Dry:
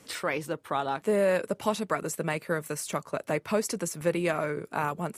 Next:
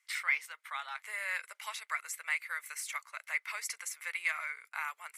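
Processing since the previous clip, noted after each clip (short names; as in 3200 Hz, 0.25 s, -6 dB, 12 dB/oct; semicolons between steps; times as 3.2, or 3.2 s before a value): HPF 1200 Hz 24 dB/oct; gate -54 dBFS, range -16 dB; bell 2100 Hz +15 dB 0.23 oct; gain -4.5 dB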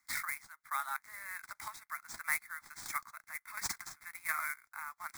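sample-rate reducer 13000 Hz, jitter 20%; chopper 1.4 Hz, depth 65%, duty 35%; fixed phaser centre 1200 Hz, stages 4; gain +4.5 dB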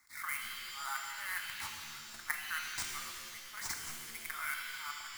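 level quantiser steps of 16 dB; auto swell 0.226 s; shimmer reverb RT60 1.8 s, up +7 st, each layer -2 dB, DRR 2.5 dB; gain +10.5 dB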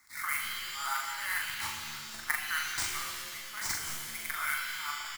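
doubler 41 ms -4 dB; gain +4.5 dB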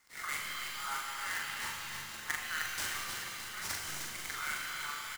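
feedback echo 0.309 s, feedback 57%, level -6.5 dB; sample-rate reducer 18000 Hz, jitter 0%; on a send at -10 dB: reverb RT60 0.95 s, pre-delay 42 ms; on the sum: gain -5 dB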